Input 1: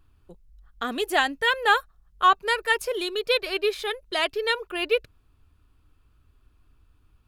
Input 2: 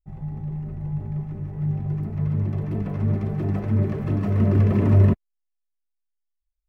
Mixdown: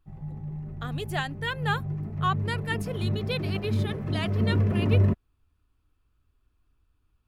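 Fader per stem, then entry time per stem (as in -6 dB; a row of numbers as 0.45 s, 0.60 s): -9.0 dB, -5.5 dB; 0.00 s, 0.00 s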